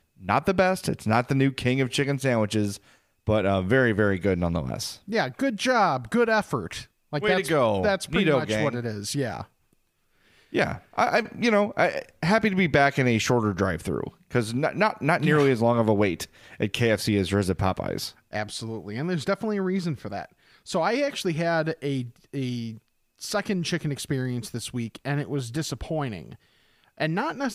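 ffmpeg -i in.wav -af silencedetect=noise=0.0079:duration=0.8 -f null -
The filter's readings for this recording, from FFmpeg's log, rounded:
silence_start: 9.44
silence_end: 10.53 | silence_duration: 1.08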